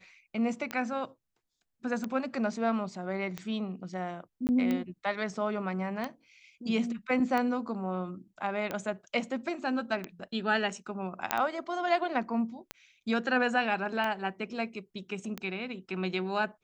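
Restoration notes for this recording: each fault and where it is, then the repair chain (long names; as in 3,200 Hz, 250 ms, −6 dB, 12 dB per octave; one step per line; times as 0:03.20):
scratch tick 45 rpm −19 dBFS
0:04.47–0:04.49: drop-out 19 ms
0:11.31: click −9 dBFS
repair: click removal
repair the gap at 0:04.47, 19 ms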